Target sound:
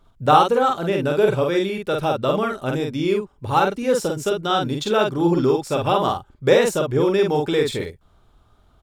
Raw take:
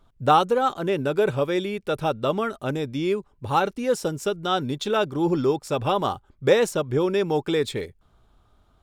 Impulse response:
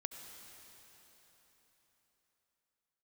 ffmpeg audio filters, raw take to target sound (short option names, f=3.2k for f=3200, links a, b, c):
-filter_complex "[0:a]asplit=2[a][b];[b]adelay=47,volume=-3dB[c];[a][c]amix=inputs=2:normalize=0,volume=2dB"